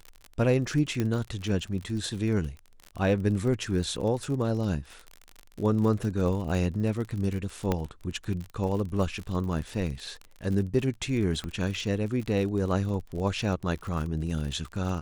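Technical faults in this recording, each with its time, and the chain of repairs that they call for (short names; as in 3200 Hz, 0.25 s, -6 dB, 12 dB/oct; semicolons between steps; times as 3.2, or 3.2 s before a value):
crackle 43/s -33 dBFS
1 pop -15 dBFS
7.72 pop -13 dBFS
11.44 pop -22 dBFS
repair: de-click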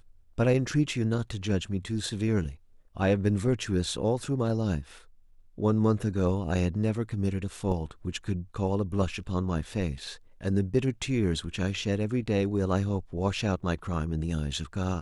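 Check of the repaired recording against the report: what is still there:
1 pop
7.72 pop
11.44 pop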